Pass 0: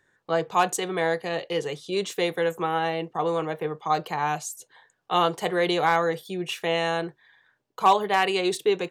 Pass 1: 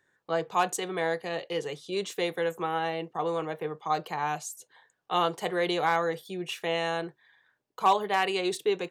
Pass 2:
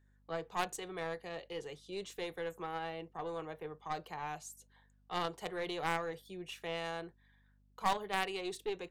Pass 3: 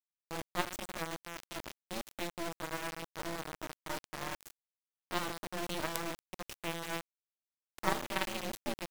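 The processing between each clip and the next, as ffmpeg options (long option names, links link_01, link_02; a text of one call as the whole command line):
ffmpeg -i in.wav -af "lowshelf=frequency=65:gain=-10.5,volume=-4dB" out.wav
ffmpeg -i in.wav -af "aeval=exprs='val(0)+0.00141*(sin(2*PI*50*n/s)+sin(2*PI*2*50*n/s)/2+sin(2*PI*3*50*n/s)/3+sin(2*PI*4*50*n/s)/4+sin(2*PI*5*50*n/s)/5)':channel_layout=same,aeval=exprs='0.224*(cos(1*acos(clip(val(0)/0.224,-1,1)))-cos(1*PI/2))+0.0501*(cos(2*acos(clip(val(0)/0.224,-1,1)))-cos(2*PI/2))+0.0631*(cos(3*acos(clip(val(0)/0.224,-1,1)))-cos(3*PI/2))+0.0251*(cos(5*acos(clip(val(0)/0.224,-1,1)))-cos(5*PI/2))+0.00141*(cos(8*acos(clip(val(0)/0.224,-1,1)))-cos(8*PI/2))':channel_layout=same,volume=-7.5dB" out.wav
ffmpeg -i in.wav -af "aecho=1:1:96:0.2,aeval=exprs='val(0)*sin(2*PI*170*n/s)':channel_layout=same,acrusher=bits=4:dc=4:mix=0:aa=0.000001,volume=5.5dB" out.wav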